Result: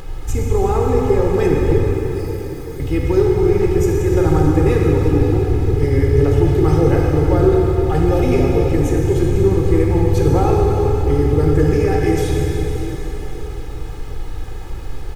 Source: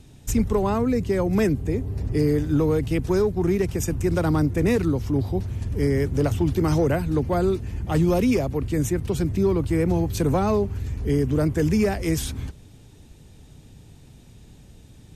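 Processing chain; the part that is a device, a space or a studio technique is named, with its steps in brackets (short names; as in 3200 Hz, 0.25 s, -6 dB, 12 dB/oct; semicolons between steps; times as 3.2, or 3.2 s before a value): car interior (bell 120 Hz +5 dB 0.79 oct; high shelf 3700 Hz -8 dB; brown noise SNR 11 dB); comb 2.4 ms, depth 79%; 1.91–2.8 differentiator; plate-style reverb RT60 4.4 s, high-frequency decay 0.9×, DRR -2.5 dB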